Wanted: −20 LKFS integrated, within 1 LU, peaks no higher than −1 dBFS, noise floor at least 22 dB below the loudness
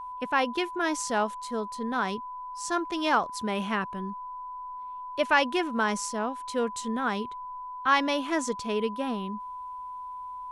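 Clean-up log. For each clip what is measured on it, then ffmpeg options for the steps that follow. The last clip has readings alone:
interfering tone 1,000 Hz; level of the tone −36 dBFS; integrated loudness −29.5 LKFS; sample peak −9.0 dBFS; target loudness −20.0 LKFS
→ -af "bandreject=frequency=1000:width=30"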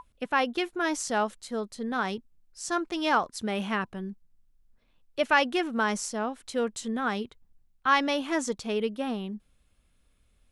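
interfering tone none found; integrated loudness −29.0 LKFS; sample peak −9.0 dBFS; target loudness −20.0 LKFS
→ -af "volume=9dB,alimiter=limit=-1dB:level=0:latency=1"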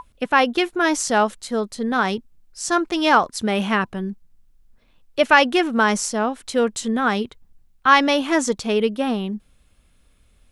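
integrated loudness −20.0 LKFS; sample peak −1.0 dBFS; background noise floor −58 dBFS

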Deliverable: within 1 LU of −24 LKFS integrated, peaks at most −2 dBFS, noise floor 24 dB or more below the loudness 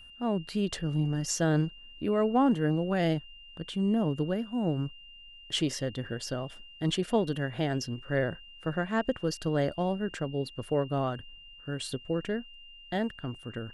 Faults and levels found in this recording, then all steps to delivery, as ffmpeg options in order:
interfering tone 2,800 Hz; level of the tone −49 dBFS; integrated loudness −31.0 LKFS; sample peak −15.0 dBFS; target loudness −24.0 LKFS
→ -af "bandreject=frequency=2800:width=30"
-af "volume=7dB"

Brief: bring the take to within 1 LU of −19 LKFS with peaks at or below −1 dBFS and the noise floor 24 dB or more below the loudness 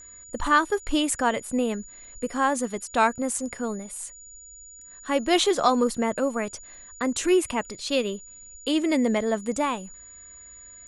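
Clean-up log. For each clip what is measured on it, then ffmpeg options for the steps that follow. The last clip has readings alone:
interfering tone 6,900 Hz; level of the tone −44 dBFS; integrated loudness −25.5 LKFS; sample peak −8.0 dBFS; target loudness −19.0 LKFS
→ -af "bandreject=frequency=6900:width=30"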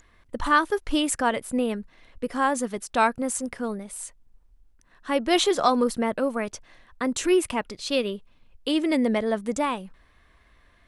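interfering tone none found; integrated loudness −25.5 LKFS; sample peak −8.0 dBFS; target loudness −19.0 LKFS
→ -af "volume=6.5dB"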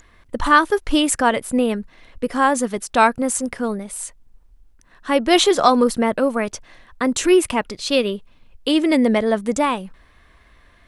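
integrated loudness −19.0 LKFS; sample peak −1.5 dBFS; background noise floor −53 dBFS

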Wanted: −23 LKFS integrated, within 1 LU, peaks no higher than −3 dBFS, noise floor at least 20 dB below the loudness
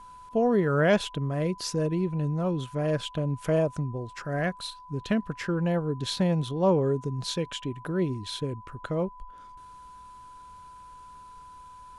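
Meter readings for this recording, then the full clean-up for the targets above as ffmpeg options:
interfering tone 1,000 Hz; level of the tone −45 dBFS; integrated loudness −28.5 LKFS; sample peak −12.0 dBFS; target loudness −23.0 LKFS
→ -af "bandreject=frequency=1000:width=30"
-af "volume=5.5dB"

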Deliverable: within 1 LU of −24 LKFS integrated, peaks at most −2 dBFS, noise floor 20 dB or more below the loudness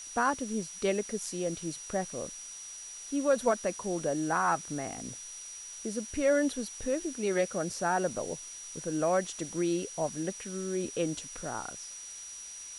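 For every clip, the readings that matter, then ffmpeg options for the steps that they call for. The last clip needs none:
interfering tone 5,800 Hz; level of the tone −43 dBFS; background noise floor −45 dBFS; target noise floor −53 dBFS; integrated loudness −32.5 LKFS; sample peak −13.0 dBFS; target loudness −24.0 LKFS
→ -af "bandreject=frequency=5800:width=30"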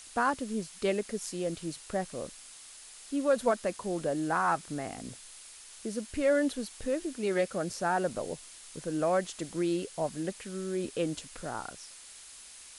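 interfering tone none found; background noise floor −50 dBFS; target noise floor −53 dBFS
→ -af "afftdn=noise_reduction=6:noise_floor=-50"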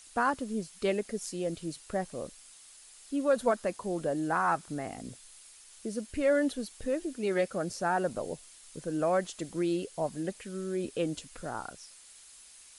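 background noise floor −54 dBFS; integrated loudness −32.5 LKFS; sample peak −13.5 dBFS; target loudness −24.0 LKFS
→ -af "volume=8.5dB"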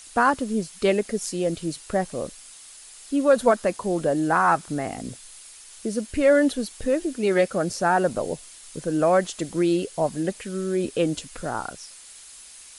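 integrated loudness −24.0 LKFS; sample peak −5.0 dBFS; background noise floor −46 dBFS

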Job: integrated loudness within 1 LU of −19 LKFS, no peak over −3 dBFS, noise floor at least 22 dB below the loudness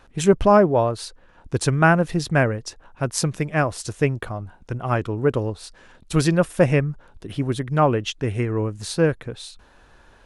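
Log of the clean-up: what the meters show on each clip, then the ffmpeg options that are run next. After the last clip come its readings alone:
integrated loudness −21.5 LKFS; sample peak −3.0 dBFS; target loudness −19.0 LKFS
→ -af "volume=2.5dB,alimiter=limit=-3dB:level=0:latency=1"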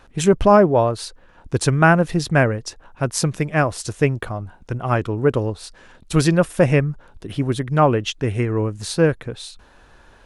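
integrated loudness −19.0 LKFS; sample peak −3.0 dBFS; background noise floor −51 dBFS

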